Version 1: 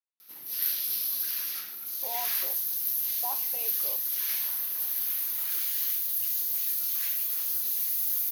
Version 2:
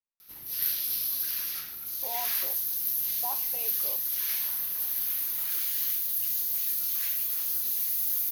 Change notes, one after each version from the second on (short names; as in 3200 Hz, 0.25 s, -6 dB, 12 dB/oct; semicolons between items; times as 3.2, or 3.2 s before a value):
master: remove HPF 220 Hz 12 dB/oct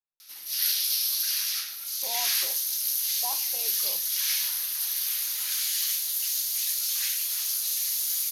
background: add weighting filter ITU-R 468